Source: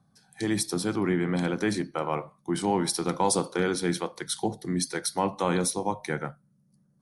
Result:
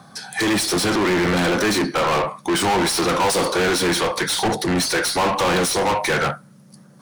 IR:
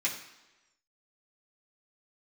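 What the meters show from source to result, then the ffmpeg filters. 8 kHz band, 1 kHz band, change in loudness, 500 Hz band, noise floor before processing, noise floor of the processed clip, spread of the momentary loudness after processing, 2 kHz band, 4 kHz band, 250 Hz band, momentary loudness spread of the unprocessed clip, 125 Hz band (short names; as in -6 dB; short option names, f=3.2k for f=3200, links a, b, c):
+7.5 dB, +10.0 dB, +9.0 dB, +8.5 dB, -67 dBFS, -48 dBFS, 3 LU, +14.0 dB, +13.5 dB, +6.0 dB, 6 LU, +5.0 dB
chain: -filter_complex "[0:a]asplit=2[a][b];[b]highpass=f=720:p=1,volume=36dB,asoftclip=type=tanh:threshold=-12dB[c];[a][c]amix=inputs=2:normalize=0,lowpass=f=2k:p=1,volume=-6dB,highshelf=f=2.8k:g=8"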